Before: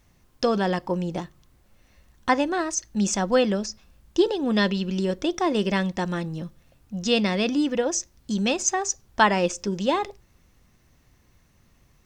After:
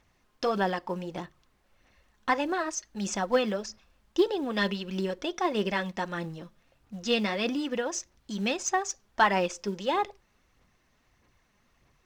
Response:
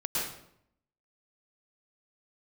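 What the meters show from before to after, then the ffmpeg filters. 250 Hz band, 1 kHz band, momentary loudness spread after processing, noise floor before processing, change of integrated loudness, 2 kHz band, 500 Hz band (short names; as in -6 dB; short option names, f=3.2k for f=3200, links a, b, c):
-7.5 dB, -3.0 dB, 10 LU, -61 dBFS, -5.0 dB, -3.0 dB, -5.0 dB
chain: -filter_complex "[0:a]aphaser=in_gain=1:out_gain=1:delay=4.9:decay=0.39:speed=1.6:type=sinusoidal,acrusher=bits=8:mode=log:mix=0:aa=0.000001,asplit=2[a][b];[b]highpass=f=720:p=1,volume=10dB,asoftclip=type=tanh:threshold=-2.5dB[c];[a][c]amix=inputs=2:normalize=0,lowpass=f=2.9k:p=1,volume=-6dB,volume=-7dB"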